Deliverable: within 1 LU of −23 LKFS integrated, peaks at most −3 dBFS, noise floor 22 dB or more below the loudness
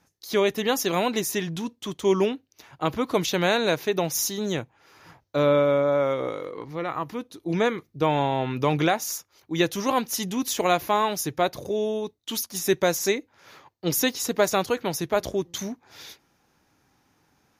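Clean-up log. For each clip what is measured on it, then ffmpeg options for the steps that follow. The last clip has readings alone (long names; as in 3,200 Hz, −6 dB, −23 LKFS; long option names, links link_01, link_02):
integrated loudness −25.5 LKFS; sample peak −9.0 dBFS; target loudness −23.0 LKFS
→ -af "volume=2.5dB"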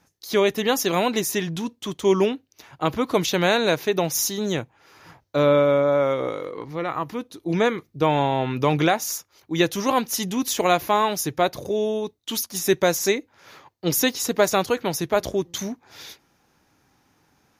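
integrated loudness −23.0 LKFS; sample peak −6.5 dBFS; background noise floor −66 dBFS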